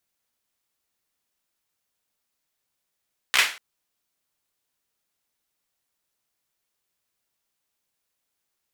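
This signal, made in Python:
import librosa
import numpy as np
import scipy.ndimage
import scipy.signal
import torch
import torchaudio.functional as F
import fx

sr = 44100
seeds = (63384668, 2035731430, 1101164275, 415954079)

y = fx.drum_clap(sr, seeds[0], length_s=0.24, bursts=4, spacing_ms=15, hz=2100.0, decay_s=0.36)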